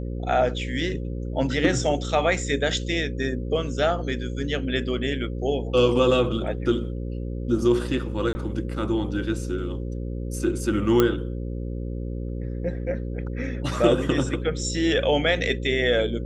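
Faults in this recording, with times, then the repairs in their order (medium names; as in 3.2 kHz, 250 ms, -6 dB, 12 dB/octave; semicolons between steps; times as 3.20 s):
buzz 60 Hz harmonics 9 -30 dBFS
8.33–8.35 s: dropout 20 ms
11.00 s: pop -6 dBFS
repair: de-click; de-hum 60 Hz, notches 9; interpolate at 8.33 s, 20 ms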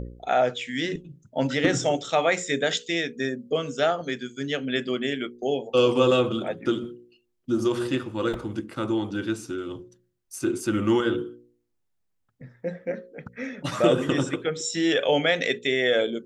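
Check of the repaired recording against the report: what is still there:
nothing left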